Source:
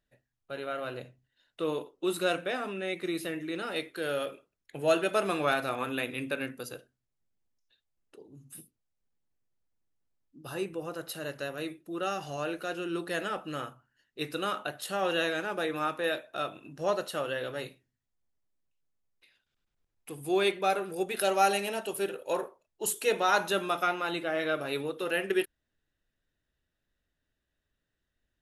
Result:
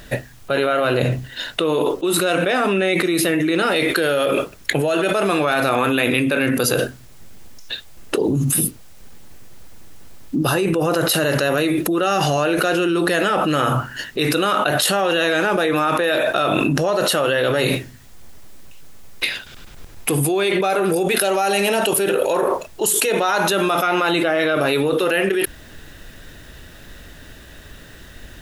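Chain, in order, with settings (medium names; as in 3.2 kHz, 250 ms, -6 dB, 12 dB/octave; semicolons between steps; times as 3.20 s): level flattener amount 100%; trim +2 dB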